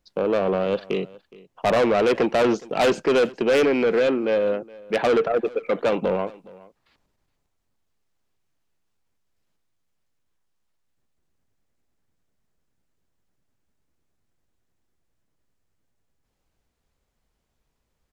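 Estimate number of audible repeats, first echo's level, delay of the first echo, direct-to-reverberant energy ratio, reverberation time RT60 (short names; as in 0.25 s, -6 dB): 1, -22.0 dB, 0.417 s, none, none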